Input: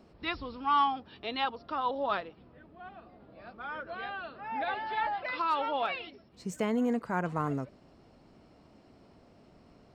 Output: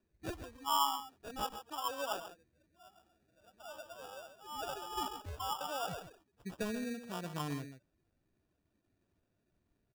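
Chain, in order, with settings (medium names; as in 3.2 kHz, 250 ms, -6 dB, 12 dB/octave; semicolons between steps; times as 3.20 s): expander on every frequency bin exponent 1.5; 5.08–5.61 s: high-pass 1.1 kHz 24 dB/octave; 6.70–7.28 s: compression, threshold -32 dBFS, peak gain reduction 6 dB; delay 135 ms -10.5 dB; sample-and-hold 21×; trim -5 dB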